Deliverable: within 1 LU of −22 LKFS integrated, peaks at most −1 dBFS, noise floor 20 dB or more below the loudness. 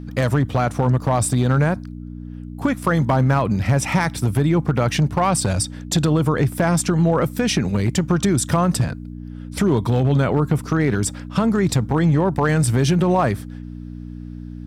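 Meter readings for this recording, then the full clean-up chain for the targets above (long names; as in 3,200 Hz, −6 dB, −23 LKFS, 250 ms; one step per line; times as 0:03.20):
share of clipped samples 0.9%; peaks flattened at −10.5 dBFS; mains hum 60 Hz; hum harmonics up to 300 Hz; level of the hum −30 dBFS; integrated loudness −19.5 LKFS; sample peak −10.5 dBFS; target loudness −22.0 LKFS
→ clipped peaks rebuilt −10.5 dBFS
hum removal 60 Hz, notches 5
level −2.5 dB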